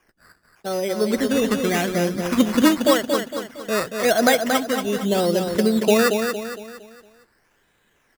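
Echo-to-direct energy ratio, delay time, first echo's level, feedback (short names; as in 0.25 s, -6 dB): -5.0 dB, 0.23 s, -6.0 dB, 42%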